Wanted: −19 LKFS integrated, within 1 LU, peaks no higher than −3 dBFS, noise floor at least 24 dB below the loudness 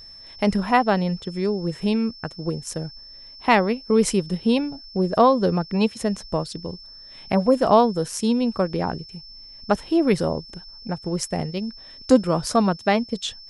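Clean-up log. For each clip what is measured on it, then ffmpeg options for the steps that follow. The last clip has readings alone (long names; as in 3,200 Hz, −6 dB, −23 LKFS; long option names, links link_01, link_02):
interfering tone 5,300 Hz; level of the tone −41 dBFS; integrated loudness −22.5 LKFS; sample peak −4.0 dBFS; target loudness −19.0 LKFS
→ -af "bandreject=frequency=5300:width=30"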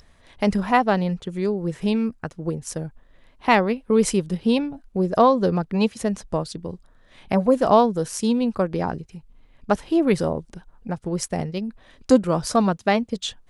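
interfering tone none found; integrated loudness −22.5 LKFS; sample peak −4.0 dBFS; target loudness −19.0 LKFS
→ -af "volume=3.5dB,alimiter=limit=-3dB:level=0:latency=1"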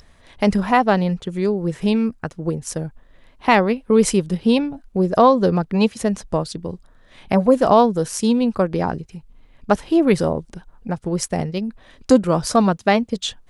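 integrated loudness −19.0 LKFS; sample peak −3.0 dBFS; background noise floor −51 dBFS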